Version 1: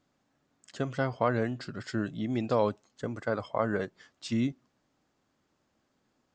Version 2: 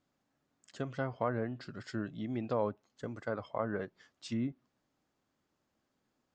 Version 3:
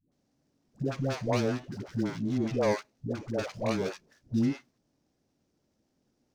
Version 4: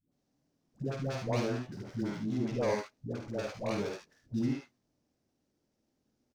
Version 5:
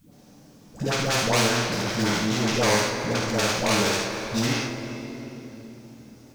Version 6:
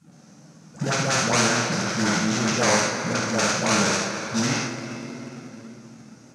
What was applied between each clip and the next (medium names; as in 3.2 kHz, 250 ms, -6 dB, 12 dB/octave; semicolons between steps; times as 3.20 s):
low-pass that closes with the level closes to 1.8 kHz, closed at -24 dBFS; trim -6 dB
median filter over 41 samples; peaking EQ 5.6 kHz +13.5 dB 0.9 oct; phase dispersion highs, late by 119 ms, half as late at 470 Hz; trim +8 dB
early reflections 50 ms -6 dB, 74 ms -6.5 dB; trim -5.5 dB
hum notches 50/100 Hz; two-slope reverb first 0.29 s, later 3 s, from -18 dB, DRR 1 dB; spectrum-flattening compressor 2:1; trim +7.5 dB
in parallel at -7.5 dB: decimation with a swept rate 35×, swing 60% 1.7 Hz; on the sum: cabinet simulation 160–9900 Hz, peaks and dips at 160 Hz +8 dB, 290 Hz -4 dB, 420 Hz -5 dB, 1.4 kHz +6 dB, 3.3 kHz -4 dB, 6.2 kHz +6 dB